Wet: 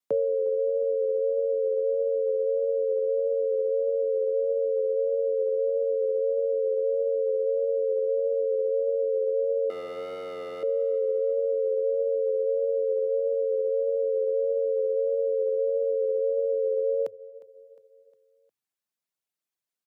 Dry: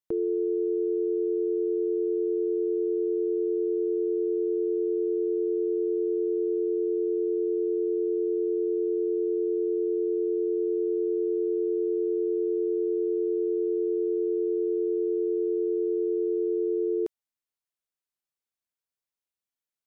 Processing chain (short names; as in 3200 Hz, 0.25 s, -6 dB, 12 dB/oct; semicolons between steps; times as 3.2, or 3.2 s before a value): reverb removal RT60 0.7 s; 9.7–10.63 hard clip -38.5 dBFS, distortion -15 dB; 13.06–13.97 de-hum 89.75 Hz, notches 34; frequency shift +100 Hz; vibrato 1.6 Hz 31 cents; on a send: feedback echo 0.357 s, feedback 49%, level -20.5 dB; on the sum: gain +3.5 dB